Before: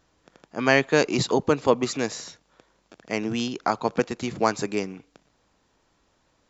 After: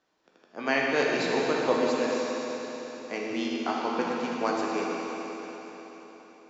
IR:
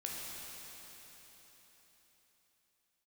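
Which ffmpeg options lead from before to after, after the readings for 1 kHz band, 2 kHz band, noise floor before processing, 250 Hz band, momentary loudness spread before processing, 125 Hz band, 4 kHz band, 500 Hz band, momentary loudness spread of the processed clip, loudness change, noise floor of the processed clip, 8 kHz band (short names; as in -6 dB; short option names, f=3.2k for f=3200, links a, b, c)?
-2.5 dB, -2.5 dB, -68 dBFS, -3.5 dB, 11 LU, -12.5 dB, -3.5 dB, -3.0 dB, 16 LU, -4.0 dB, -63 dBFS, n/a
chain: -filter_complex "[0:a]acrossover=split=200 6100:gain=0.1 1 0.178[a][b][c];[a][b][c]amix=inputs=3:normalize=0[d];[1:a]atrim=start_sample=2205[e];[d][e]afir=irnorm=-1:irlink=0,volume=-3.5dB"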